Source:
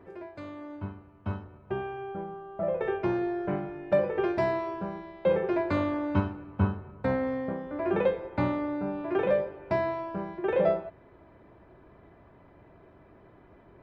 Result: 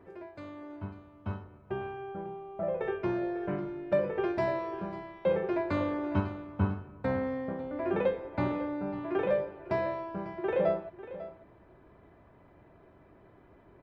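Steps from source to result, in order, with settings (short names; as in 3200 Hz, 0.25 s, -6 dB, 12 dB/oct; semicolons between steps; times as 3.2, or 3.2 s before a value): 2.91–4.16 notch 790 Hz, Q 12; echo 0.547 s -14.5 dB; gain -3 dB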